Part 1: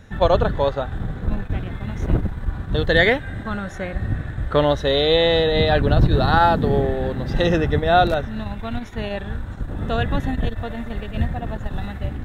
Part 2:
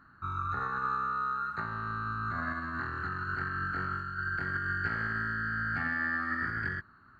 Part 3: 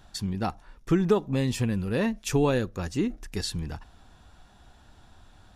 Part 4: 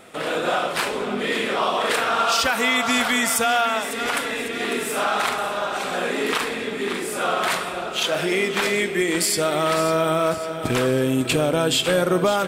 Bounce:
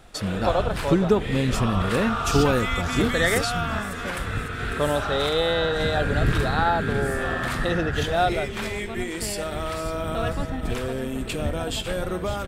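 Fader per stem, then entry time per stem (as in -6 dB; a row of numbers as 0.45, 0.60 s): -6.5, +0.5, +2.5, -9.5 dB; 0.25, 1.30, 0.00, 0.00 s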